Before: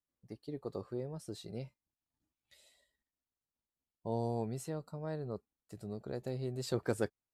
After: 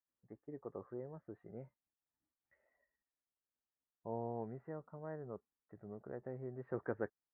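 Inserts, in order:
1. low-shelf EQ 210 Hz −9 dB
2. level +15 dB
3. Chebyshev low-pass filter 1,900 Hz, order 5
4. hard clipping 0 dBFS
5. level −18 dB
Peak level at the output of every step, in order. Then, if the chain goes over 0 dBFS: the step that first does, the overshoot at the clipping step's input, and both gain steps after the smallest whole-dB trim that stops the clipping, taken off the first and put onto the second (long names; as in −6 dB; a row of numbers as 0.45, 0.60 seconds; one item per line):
−20.0, −5.0, −6.0, −6.0, −24.0 dBFS
no step passes full scale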